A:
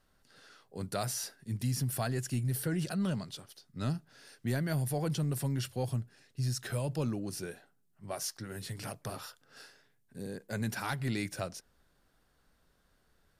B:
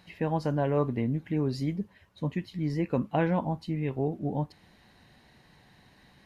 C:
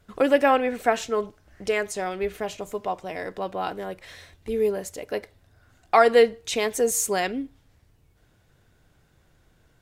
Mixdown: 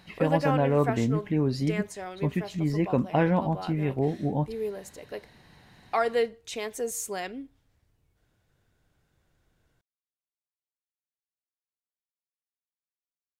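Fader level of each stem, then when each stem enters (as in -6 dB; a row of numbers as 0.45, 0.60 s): off, +3.0 dB, -9.0 dB; off, 0.00 s, 0.00 s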